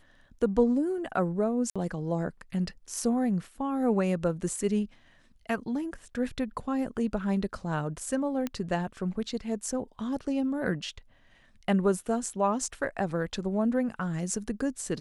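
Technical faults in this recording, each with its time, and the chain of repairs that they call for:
1.70–1.76 s: dropout 56 ms
8.47 s: pop -18 dBFS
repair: de-click; interpolate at 1.70 s, 56 ms

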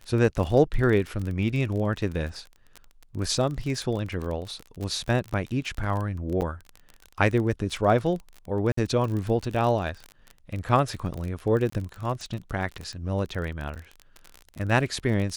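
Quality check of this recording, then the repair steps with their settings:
crackle 32 per s -30 dBFS
6.41–6.42 s: dropout 8.5 ms
8.72–8.77 s: dropout 54 ms
11.70–11.72 s: dropout 24 ms
13.75–13.76 s: dropout 8.3 ms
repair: de-click; interpolate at 6.41 s, 8.5 ms; interpolate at 8.72 s, 54 ms; interpolate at 11.70 s, 24 ms; interpolate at 13.75 s, 8.3 ms

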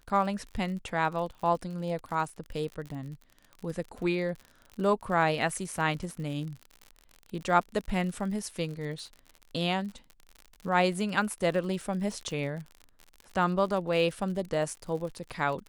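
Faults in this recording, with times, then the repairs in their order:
crackle 58 per s -37 dBFS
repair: de-click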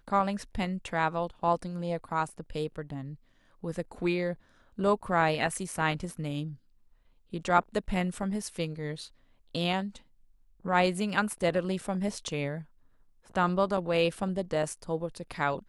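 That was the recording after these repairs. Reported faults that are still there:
nothing left

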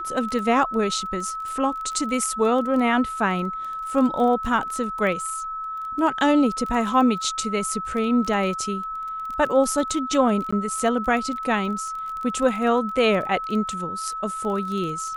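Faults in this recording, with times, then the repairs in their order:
crackle 20 per s -29 dBFS
whine 1.3 kHz -28 dBFS
10.51–10.53 s: dropout 15 ms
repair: de-click; band-stop 1.3 kHz, Q 30; interpolate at 10.51 s, 15 ms

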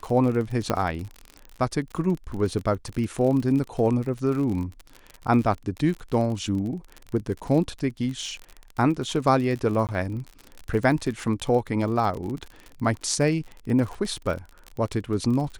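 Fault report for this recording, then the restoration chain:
crackle 45 per s -30 dBFS
0.70 s: pop -9 dBFS
9.87–9.89 s: dropout 18 ms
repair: de-click; interpolate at 9.87 s, 18 ms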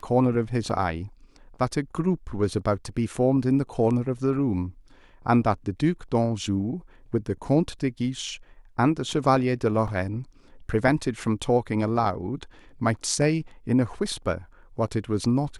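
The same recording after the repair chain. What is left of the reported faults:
0.70 s: pop

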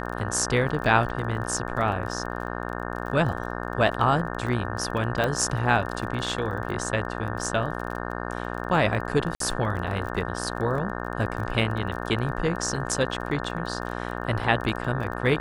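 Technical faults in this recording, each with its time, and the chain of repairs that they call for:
buzz 60 Hz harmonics 30 -32 dBFS
crackle 25 per s -33 dBFS
5.24 s: pop -12 dBFS
9.35–9.40 s: dropout 53 ms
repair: de-click; de-hum 60 Hz, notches 30; interpolate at 9.35 s, 53 ms

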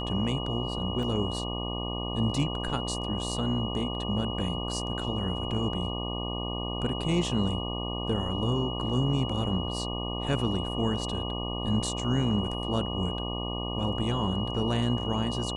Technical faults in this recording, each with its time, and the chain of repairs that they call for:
buzz 60 Hz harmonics 20 -34 dBFS
whine 2.9 kHz -36 dBFS
1.03 s: dropout 2.6 ms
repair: band-stop 2.9 kHz, Q 30; de-hum 60 Hz, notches 20; interpolate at 1.03 s, 2.6 ms

